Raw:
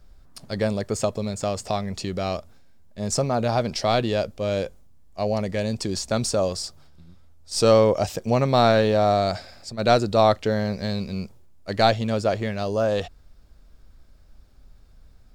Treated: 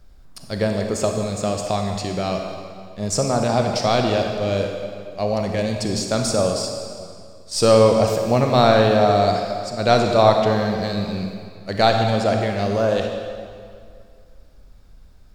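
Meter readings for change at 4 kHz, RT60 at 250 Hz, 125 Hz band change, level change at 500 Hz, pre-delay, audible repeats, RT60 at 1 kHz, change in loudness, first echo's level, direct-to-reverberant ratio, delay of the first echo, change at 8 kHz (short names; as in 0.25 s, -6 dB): +3.5 dB, 2.2 s, +3.5 dB, +3.5 dB, 32 ms, none, 2.2 s, +3.5 dB, none, 2.5 dB, none, +3.5 dB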